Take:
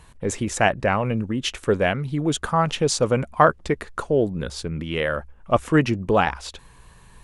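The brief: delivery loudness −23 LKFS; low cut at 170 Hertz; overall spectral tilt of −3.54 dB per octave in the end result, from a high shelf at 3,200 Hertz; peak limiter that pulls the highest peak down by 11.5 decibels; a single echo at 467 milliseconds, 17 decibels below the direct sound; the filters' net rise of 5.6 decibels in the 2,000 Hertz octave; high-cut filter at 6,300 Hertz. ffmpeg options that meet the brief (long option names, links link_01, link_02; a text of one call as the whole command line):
ffmpeg -i in.wav -af "highpass=170,lowpass=6300,equalizer=frequency=2000:width_type=o:gain=8.5,highshelf=frequency=3200:gain=-4,alimiter=limit=-10dB:level=0:latency=1,aecho=1:1:467:0.141,volume=2dB" out.wav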